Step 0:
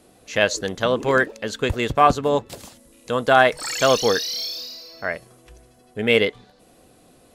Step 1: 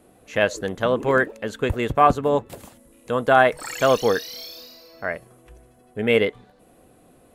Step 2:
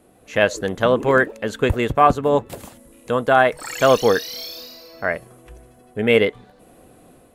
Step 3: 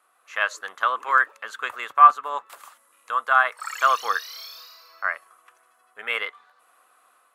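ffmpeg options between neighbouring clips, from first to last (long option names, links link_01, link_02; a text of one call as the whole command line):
ffmpeg -i in.wav -af "equalizer=frequency=5000:width_type=o:width=1.4:gain=-11" out.wav
ffmpeg -i in.wav -af "dynaudnorm=framelen=100:gausssize=5:maxgain=5dB" out.wav
ffmpeg -i in.wav -af "highpass=frequency=1200:width_type=q:width=4.9,volume=-7.5dB" out.wav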